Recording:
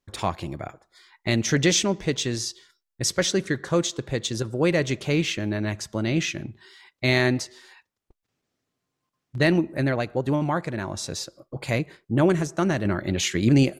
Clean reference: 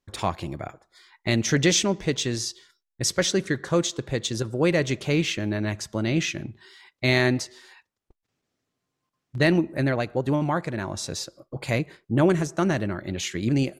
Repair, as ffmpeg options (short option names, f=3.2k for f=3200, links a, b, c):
-af "asetnsamples=n=441:p=0,asendcmd='12.85 volume volume -5dB',volume=0dB"